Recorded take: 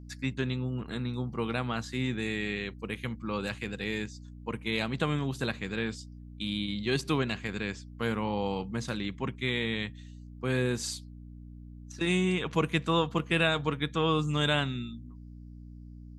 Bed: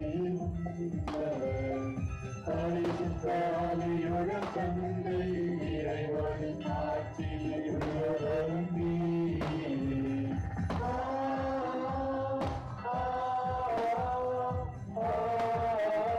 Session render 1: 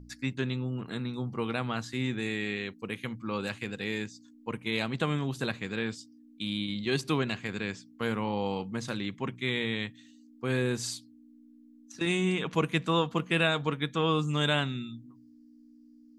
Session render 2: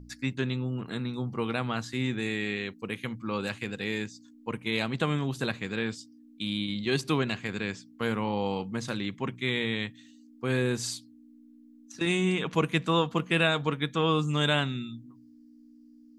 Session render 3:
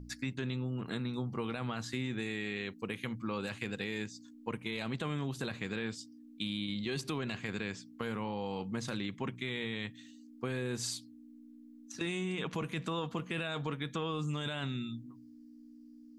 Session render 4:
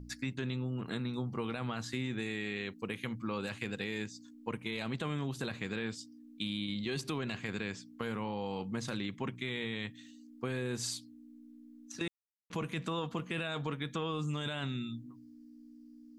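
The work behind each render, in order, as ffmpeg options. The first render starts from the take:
ffmpeg -i in.wav -af "bandreject=frequency=60:width_type=h:width=4,bandreject=frequency=120:width_type=h:width=4,bandreject=frequency=180:width_type=h:width=4" out.wav
ffmpeg -i in.wav -af "volume=1.5dB" out.wav
ffmpeg -i in.wav -af "alimiter=limit=-21.5dB:level=0:latency=1:release=11,acompressor=threshold=-34dB:ratio=3" out.wav
ffmpeg -i in.wav -filter_complex "[0:a]asplit=3[link_01][link_02][link_03];[link_01]atrim=end=12.08,asetpts=PTS-STARTPTS,afade=type=out:start_time=12.076:duration=0.004:curve=hsin[link_04];[link_02]atrim=start=12.08:end=12.5,asetpts=PTS-STARTPTS,volume=0[link_05];[link_03]atrim=start=12.5,asetpts=PTS-STARTPTS,afade=type=in:duration=0.004:curve=hsin[link_06];[link_04][link_05][link_06]concat=n=3:v=0:a=1" out.wav

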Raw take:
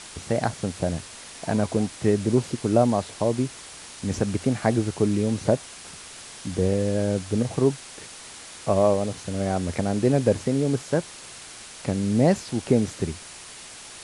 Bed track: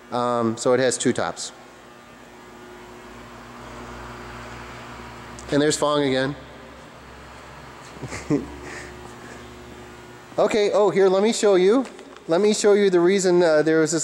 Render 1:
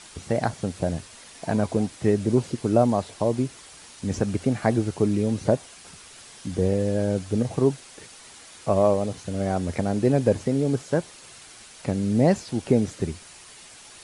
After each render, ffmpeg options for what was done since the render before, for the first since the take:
ffmpeg -i in.wav -af "afftdn=noise_reduction=6:noise_floor=-42" out.wav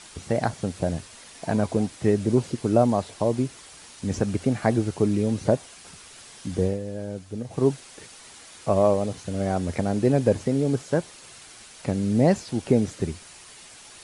ffmpeg -i in.wav -filter_complex "[0:a]asplit=3[link_01][link_02][link_03];[link_01]atrim=end=6.8,asetpts=PTS-STARTPTS,afade=type=out:start_time=6.62:duration=0.18:silence=0.354813[link_04];[link_02]atrim=start=6.8:end=7.48,asetpts=PTS-STARTPTS,volume=-9dB[link_05];[link_03]atrim=start=7.48,asetpts=PTS-STARTPTS,afade=type=in:duration=0.18:silence=0.354813[link_06];[link_04][link_05][link_06]concat=n=3:v=0:a=1" out.wav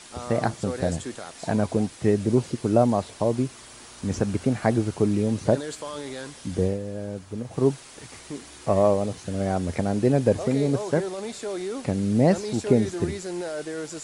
ffmpeg -i in.wav -i bed.wav -filter_complex "[1:a]volume=-14.5dB[link_01];[0:a][link_01]amix=inputs=2:normalize=0" out.wav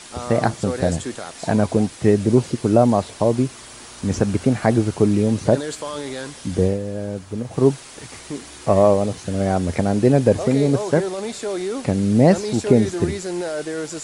ffmpeg -i in.wav -af "volume=5.5dB,alimiter=limit=-2dB:level=0:latency=1" out.wav

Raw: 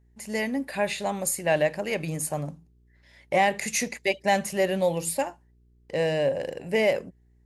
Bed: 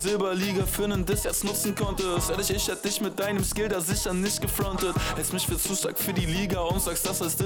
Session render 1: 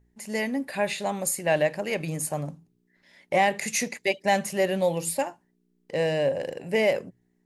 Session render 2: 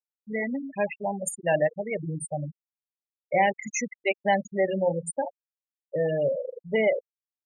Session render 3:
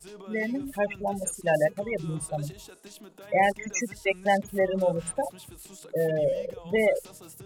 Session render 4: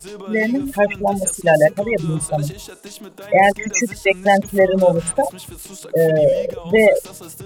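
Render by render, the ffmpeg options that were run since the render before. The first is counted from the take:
ffmpeg -i in.wav -af "bandreject=frequency=60:width_type=h:width=4,bandreject=frequency=120:width_type=h:width=4" out.wav
ffmpeg -i in.wav -af "bandreject=frequency=91.55:width_type=h:width=4,bandreject=frequency=183.1:width_type=h:width=4,bandreject=frequency=274.65:width_type=h:width=4,bandreject=frequency=366.2:width_type=h:width=4,bandreject=frequency=457.75:width_type=h:width=4,bandreject=frequency=549.3:width_type=h:width=4,bandreject=frequency=640.85:width_type=h:width=4,bandreject=frequency=732.4:width_type=h:width=4,bandreject=frequency=823.95:width_type=h:width=4,bandreject=frequency=915.5:width_type=h:width=4,bandreject=frequency=1007.05:width_type=h:width=4,afftfilt=real='re*gte(hypot(re,im),0.112)':imag='im*gte(hypot(re,im),0.112)':win_size=1024:overlap=0.75" out.wav
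ffmpeg -i in.wav -i bed.wav -filter_complex "[1:a]volume=-19.5dB[link_01];[0:a][link_01]amix=inputs=2:normalize=0" out.wav
ffmpeg -i in.wav -af "volume=11dB,alimiter=limit=-3dB:level=0:latency=1" out.wav

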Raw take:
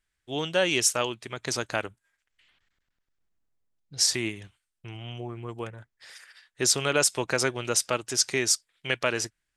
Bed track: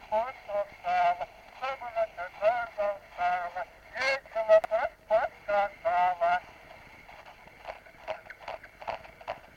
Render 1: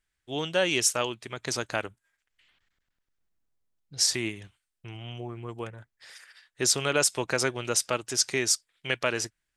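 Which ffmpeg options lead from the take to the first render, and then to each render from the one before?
ffmpeg -i in.wav -af "volume=-1dB" out.wav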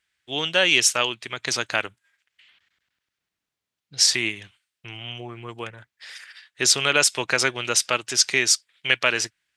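ffmpeg -i in.wav -af "highpass=85,equalizer=frequency=2800:width_type=o:width=2.5:gain=10.5" out.wav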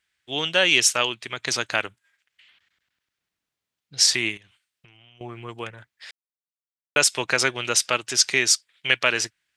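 ffmpeg -i in.wav -filter_complex "[0:a]asettb=1/sr,asplit=3[link_01][link_02][link_03];[link_01]atrim=end=4.374[link_04];[link_02]atrim=start=4.37:end=5.21,asetpts=PTS-STARTPTS,afade=type=in:duration=0.004:curve=qsin,afade=type=out:start_time=0.836:duration=0.004:curve=qsin,acompressor=threshold=-50dB:ratio=8:attack=3.2:release=140:knee=1:detection=peak[link_05];[link_03]atrim=start=5.206[link_06];[link_04][link_05]acrossfade=duration=0.004:curve1=hsin:curve2=qsin[link_07];[link_07][link_06]acrossfade=duration=0.004:curve1=qsin:curve2=hsin,asplit=3[link_08][link_09][link_10];[link_08]atrim=end=6.11,asetpts=PTS-STARTPTS,afade=type=out:start_time=6.106:duration=0.004:curve=hsin[link_11];[link_09]atrim=start=6.11:end=6.96,asetpts=PTS-STARTPTS,volume=0[link_12];[link_10]atrim=start=6.96,asetpts=PTS-STARTPTS,afade=type=in:duration=0.004:curve=hsin[link_13];[link_11][link_12][link_13]concat=n=3:v=0:a=1" out.wav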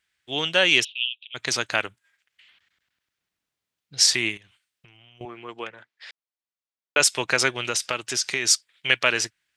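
ffmpeg -i in.wav -filter_complex "[0:a]asplit=3[link_01][link_02][link_03];[link_01]afade=type=out:start_time=0.83:duration=0.02[link_04];[link_02]asuperpass=centerf=3100:order=8:qfactor=2.8,afade=type=in:start_time=0.83:duration=0.02,afade=type=out:start_time=1.34:duration=0.02[link_05];[link_03]afade=type=in:start_time=1.34:duration=0.02[link_06];[link_04][link_05][link_06]amix=inputs=3:normalize=0,asettb=1/sr,asplit=3[link_07][link_08][link_09];[link_07]atrim=end=5.254[link_10];[link_08]atrim=start=5.25:end=7,asetpts=PTS-STARTPTS,afade=type=in:duration=0.004:curve=qsin,afade=type=out:start_time=1.746:duration=0.004:curve=qsin,highpass=260,lowpass=5200[link_11];[link_09]atrim=start=6.996[link_12];[link_10][link_11]acrossfade=duration=0.004:curve1=hsin:curve2=qsin[link_13];[link_13][link_12]acrossfade=duration=0.004:curve1=qsin:curve2=hsin,asettb=1/sr,asplit=3[link_14][link_15][link_16];[link_14]atrim=end=7.654[link_17];[link_15]atrim=start=7.65:end=8.45,asetpts=PTS-STARTPTS,afade=type=in:duration=0.004:curve=qsin,afade=type=out:start_time=0.796:duration=0.004:curve=qsin,acompressor=threshold=-20dB:ratio=5:attack=3.2:release=140:knee=1:detection=peak[link_18];[link_16]atrim=start=8.446[link_19];[link_17][link_18]acrossfade=duration=0.004:curve1=hsin:curve2=qsin[link_20];[link_20][link_19]acrossfade=duration=0.004:curve1=qsin:curve2=hsin" out.wav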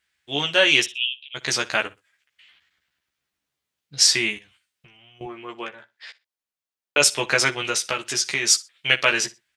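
ffmpeg -i in.wav -filter_complex "[0:a]asplit=2[link_01][link_02];[link_02]adelay=14,volume=-3dB[link_03];[link_01][link_03]amix=inputs=2:normalize=0,aecho=1:1:61|122:0.1|0.022" out.wav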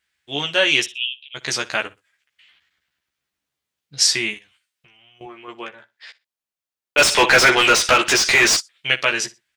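ffmpeg -i in.wav -filter_complex "[0:a]asettb=1/sr,asplit=3[link_01][link_02][link_03];[link_01]atrim=end=4.344[link_04];[link_02]atrim=start=4.34:end=5.48,asetpts=PTS-STARTPTS,afade=type=in:duration=0.004:curve=qsin,afade=type=out:start_time=1.136:duration=0.004:curve=qsin,lowshelf=frequency=360:gain=-7[link_05];[link_03]atrim=start=5.476[link_06];[link_04][link_05]acrossfade=duration=0.004:curve1=hsin:curve2=qsin[link_07];[link_07][link_06]acrossfade=duration=0.004:curve1=qsin:curve2=hsin,asplit=3[link_08][link_09][link_10];[link_08]afade=type=out:start_time=6.97:duration=0.02[link_11];[link_09]asplit=2[link_12][link_13];[link_13]highpass=frequency=720:poles=1,volume=29dB,asoftclip=type=tanh:threshold=-2.5dB[link_14];[link_12][link_14]amix=inputs=2:normalize=0,lowpass=frequency=2400:poles=1,volume=-6dB,afade=type=in:start_time=6.97:duration=0.02,afade=type=out:start_time=8.59:duration=0.02[link_15];[link_10]afade=type=in:start_time=8.59:duration=0.02[link_16];[link_11][link_15][link_16]amix=inputs=3:normalize=0" out.wav

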